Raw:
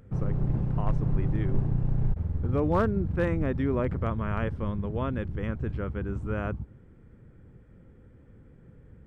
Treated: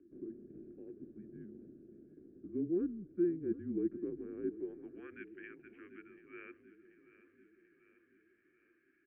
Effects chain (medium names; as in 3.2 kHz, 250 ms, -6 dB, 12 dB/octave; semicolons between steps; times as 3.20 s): bass shelf 160 Hz +7 dB; reverse; compression, threshold -29 dBFS, peak gain reduction 15.5 dB; reverse; vowel filter e; band-pass sweep 430 Hz -> 2.4 kHz, 4.46–5.18 s; on a send: feedback delay 736 ms, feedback 58%, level -16 dB; on the sum: mistuned SSB -170 Hz 240–3300 Hz; trim +12 dB